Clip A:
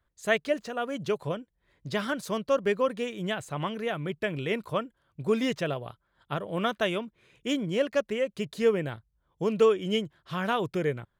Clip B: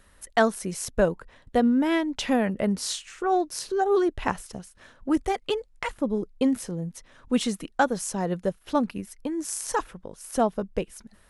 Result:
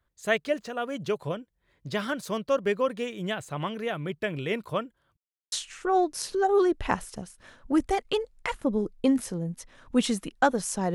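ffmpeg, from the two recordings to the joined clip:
-filter_complex "[0:a]apad=whole_dur=10.94,atrim=end=10.94,asplit=2[s0][s1];[s0]atrim=end=5.17,asetpts=PTS-STARTPTS,afade=t=out:st=5.166:d=0.004:c=hsin[s2];[s1]atrim=start=5.17:end=5.52,asetpts=PTS-STARTPTS,volume=0[s3];[1:a]atrim=start=2.89:end=8.31,asetpts=PTS-STARTPTS,afade=t=in:d=0.004:c=hsin[s4];[s2][s3][s4]concat=n=3:v=0:a=1"

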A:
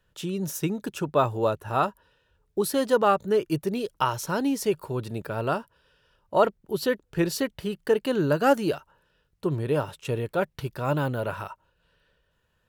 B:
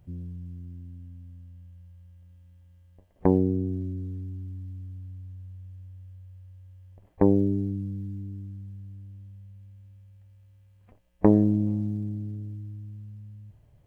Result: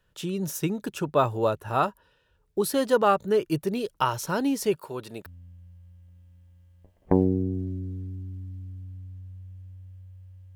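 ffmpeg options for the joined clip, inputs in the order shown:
-filter_complex "[0:a]asettb=1/sr,asplit=3[s0][s1][s2];[s0]atrim=end=4.764[s3];[s1]atrim=start=4.76:end=5.26,asetpts=PTS-STARTPTS,afade=t=in:d=0.004:c=qsin,afade=t=out:st=0.496:d=0.004:c=qsin,highpass=f=450:p=1[s4];[s2]atrim=start=5.256[s5];[s3][s4]acrossfade=d=0.004:c1=hsin:c2=qsin[s6];[s6][s5]acrossfade=d=0.004:c1=qsin:c2=hsin,apad=whole_dur=10.55,atrim=end=10.55,atrim=end=5.262[s7];[1:a]atrim=start=1.398:end=6.69[s8];[s7][s8]acrossfade=d=0.004:c1=hsin:c2=hsin"

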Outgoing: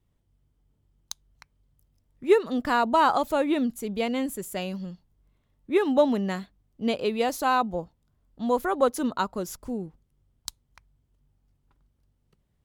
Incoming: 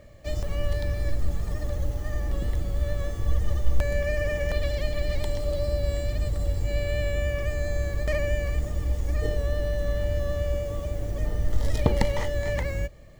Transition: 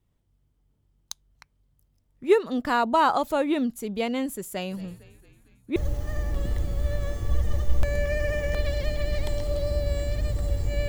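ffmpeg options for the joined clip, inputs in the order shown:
-filter_complex "[0:a]asplit=3[s0][s1][s2];[s0]afade=t=out:st=4.7:d=0.02[s3];[s1]asplit=7[s4][s5][s6][s7][s8][s9][s10];[s5]adelay=225,afreqshift=-77,volume=0.112[s11];[s6]adelay=450,afreqshift=-154,volume=0.0692[s12];[s7]adelay=675,afreqshift=-231,volume=0.0432[s13];[s8]adelay=900,afreqshift=-308,volume=0.0266[s14];[s9]adelay=1125,afreqshift=-385,volume=0.0166[s15];[s10]adelay=1350,afreqshift=-462,volume=0.0102[s16];[s4][s11][s12][s13][s14][s15][s16]amix=inputs=7:normalize=0,afade=t=in:st=4.7:d=0.02,afade=t=out:st=5.76:d=0.02[s17];[s2]afade=t=in:st=5.76:d=0.02[s18];[s3][s17][s18]amix=inputs=3:normalize=0,apad=whole_dur=10.88,atrim=end=10.88,atrim=end=5.762[s19];[1:a]atrim=start=1.728:end=6.85[s20];[s19][s20]acrossfade=d=0.004:c1=hsin:c2=hsin"

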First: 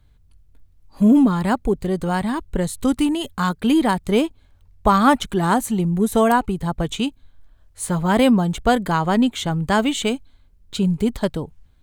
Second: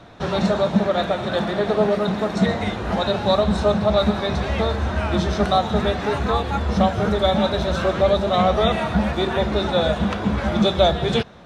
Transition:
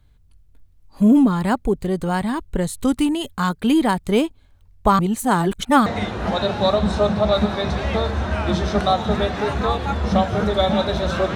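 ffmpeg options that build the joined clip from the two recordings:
-filter_complex "[0:a]apad=whole_dur=11.35,atrim=end=11.35,asplit=2[s0][s1];[s0]atrim=end=4.992[s2];[s1]atrim=start=4.988:end=5.862,asetpts=PTS-STARTPTS,areverse[s3];[1:a]atrim=start=2.508:end=8[s4];[s2][s3]acrossfade=d=0.004:c1=hsin:c2=hsin[s5];[s5][s4]acrossfade=d=0.004:c1=hsin:c2=hsin"

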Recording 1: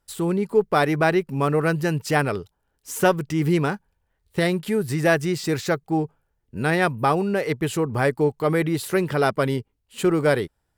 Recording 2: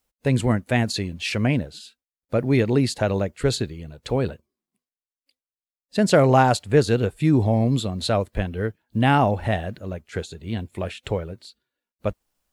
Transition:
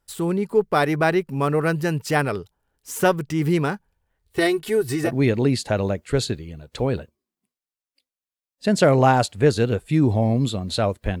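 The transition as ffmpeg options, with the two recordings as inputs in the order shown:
-filter_complex "[0:a]asettb=1/sr,asplit=3[s0][s1][s2];[s0]atrim=end=4.344[s3];[s1]atrim=start=4.34:end=5.11,asetpts=PTS-STARTPTS,afade=t=in:d=0.004:c=qsin,afade=t=out:st=0.766:d=0.004:c=qsin,aecho=1:1:2.7:0.87,atrim=end_sample=33957[s4];[s2]atrim=start=5.106[s5];[s3][s4]acrossfade=d=0.004:c1=hsin:c2=qsin[s6];[s6][s5]acrossfade=d=0.004:c1=qsin:c2=hsin,apad=whole_dur=11.2,atrim=end=11.2,atrim=end=5.11,asetpts=PTS-STARTPTS[s7];[1:a]atrim=start=2.34:end=8.51,asetpts=PTS-STARTPTS[s8];[s7][s8]acrossfade=d=0.08:c1=tri:c2=tri"

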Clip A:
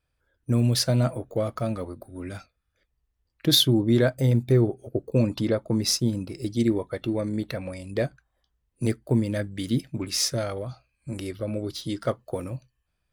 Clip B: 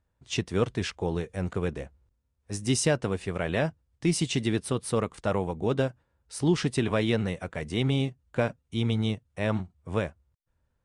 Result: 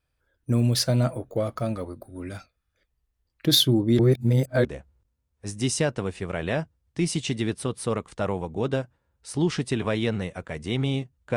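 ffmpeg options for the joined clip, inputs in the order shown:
-filter_complex "[0:a]apad=whole_dur=11.36,atrim=end=11.36,asplit=2[s0][s1];[s0]atrim=end=3.992[s2];[s1]atrim=start=3.988:end=4.652,asetpts=PTS-STARTPTS,areverse[s3];[1:a]atrim=start=1.708:end=8.42[s4];[s2][s3]acrossfade=d=0.004:c1=hsin:c2=hsin[s5];[s5][s4]acrossfade=d=0.004:c1=hsin:c2=hsin"

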